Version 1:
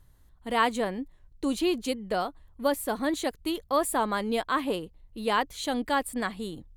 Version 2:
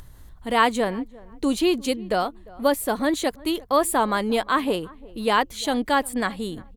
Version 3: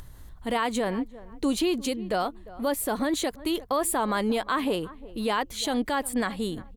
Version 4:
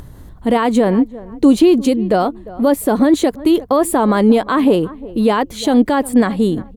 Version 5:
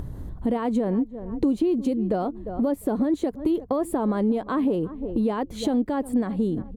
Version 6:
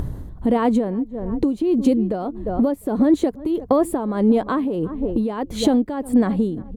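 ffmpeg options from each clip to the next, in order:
ffmpeg -i in.wav -filter_complex "[0:a]asplit=2[link_01][link_02];[link_02]adelay=350,lowpass=frequency=1300:poles=1,volume=-22dB,asplit=2[link_03][link_04];[link_04]adelay=350,lowpass=frequency=1300:poles=1,volume=0.22[link_05];[link_01][link_03][link_05]amix=inputs=3:normalize=0,acompressor=mode=upward:threshold=-41dB:ratio=2.5,volume=5.5dB" out.wav
ffmpeg -i in.wav -af "alimiter=limit=-17dB:level=0:latency=1:release=70" out.wav
ffmpeg -i in.wav -af "equalizer=frequency=250:width=0.31:gain=12,volume=4dB" out.wav
ffmpeg -i in.wav -af "tiltshelf=frequency=970:gain=6,acompressor=threshold=-21dB:ratio=3,volume=-3.5dB" out.wav
ffmpeg -i in.wav -af "tremolo=f=1.6:d=0.65,volume=8dB" out.wav

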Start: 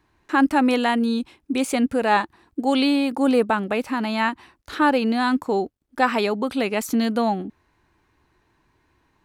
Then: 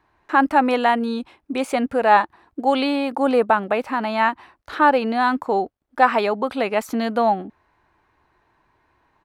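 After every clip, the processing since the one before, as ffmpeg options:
ffmpeg -i in.wav -af "firequalizer=gain_entry='entry(290,0);entry(640,9);entry(2700,2);entry(6700,-4)':delay=0.05:min_phase=1,volume=-3dB" out.wav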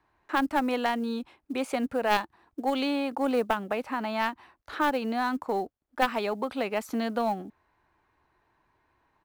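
ffmpeg -i in.wav -filter_complex "[0:a]acrusher=bits=9:mode=log:mix=0:aa=0.000001,aeval=exprs='0.891*(cos(1*acos(clip(val(0)/0.891,-1,1)))-cos(1*PI/2))+0.158*(cos(3*acos(clip(val(0)/0.891,-1,1)))-cos(3*PI/2))':channel_layout=same,acrossover=split=330|3000[link_01][link_02][link_03];[link_02]acompressor=threshold=-29dB:ratio=2[link_04];[link_01][link_04][link_03]amix=inputs=3:normalize=0" out.wav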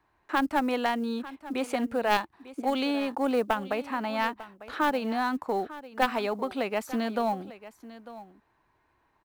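ffmpeg -i in.wav -af "aecho=1:1:898:0.15" out.wav

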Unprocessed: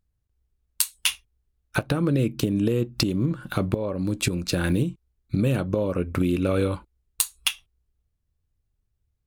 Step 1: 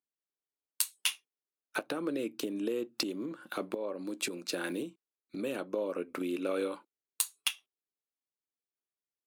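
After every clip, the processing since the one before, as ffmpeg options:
ffmpeg -i in.wav -af "highpass=frequency=280:width=0.5412,highpass=frequency=280:width=1.3066,agate=range=-6dB:threshold=-46dB:ratio=16:detection=peak,volume=-7.5dB" out.wav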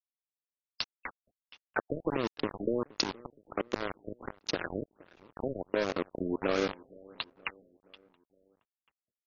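ffmpeg -i in.wav -filter_complex "[0:a]aeval=exprs='val(0)*gte(abs(val(0)),0.0299)':channel_layout=same,asplit=2[link_01][link_02];[link_02]adelay=470,lowpass=frequency=2200:poles=1,volume=-22.5dB,asplit=2[link_03][link_04];[link_04]adelay=470,lowpass=frequency=2200:poles=1,volume=0.54,asplit=2[link_05][link_06];[link_06]adelay=470,lowpass=frequency=2200:poles=1,volume=0.54,asplit=2[link_07][link_08];[link_08]adelay=470,lowpass=frequency=2200:poles=1,volume=0.54[link_09];[link_01][link_03][link_05][link_07][link_09]amix=inputs=5:normalize=0,afftfilt=real='re*lt(b*sr/1024,640*pow(7000/640,0.5+0.5*sin(2*PI*1.4*pts/sr)))':imag='im*lt(b*sr/1024,640*pow(7000/640,0.5+0.5*sin(2*PI*1.4*pts/sr)))':win_size=1024:overlap=0.75,volume=4.5dB" out.wav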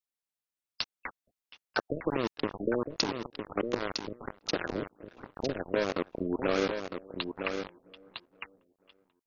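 ffmpeg -i in.wav -af "aecho=1:1:957:0.447,volume=1dB" out.wav

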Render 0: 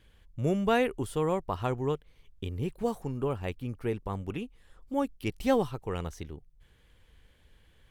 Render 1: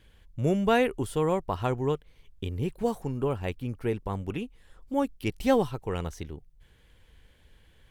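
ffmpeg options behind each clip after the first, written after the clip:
ffmpeg -i in.wav -af "bandreject=frequency=1200:width=19,volume=2.5dB" out.wav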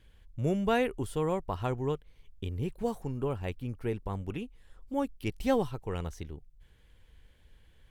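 ffmpeg -i in.wav -af "lowshelf=frequency=82:gain=5.5,volume=-4.5dB" out.wav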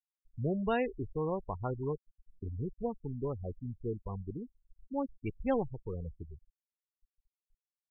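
ffmpeg -i in.wav -af "afftfilt=real='re*gte(hypot(re,im),0.0447)':imag='im*gte(hypot(re,im),0.0447)':win_size=1024:overlap=0.75,volume=-3.5dB" out.wav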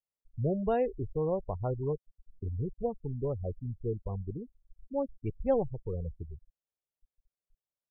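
ffmpeg -i in.wav -af "firequalizer=gain_entry='entry(120,0);entry(250,-6);entry(580,2);entry(940,-8);entry(2000,-14)':delay=0.05:min_phase=1,volume=4.5dB" out.wav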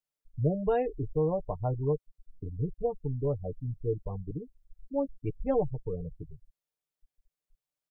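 ffmpeg -i in.wav -af "aecho=1:1:6.7:0.67" out.wav

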